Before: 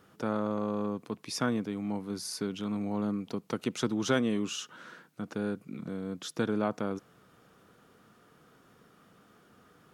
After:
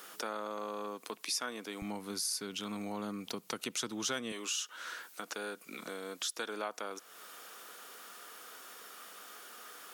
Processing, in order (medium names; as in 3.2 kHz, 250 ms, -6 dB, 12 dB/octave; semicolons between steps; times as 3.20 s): high-pass 310 Hz 12 dB/octave, from 1.82 s 61 Hz, from 4.32 s 400 Hz; tilt EQ +3.5 dB/octave; compression 2.5:1, threshold -51 dBFS, peak gain reduction 18.5 dB; trim +9.5 dB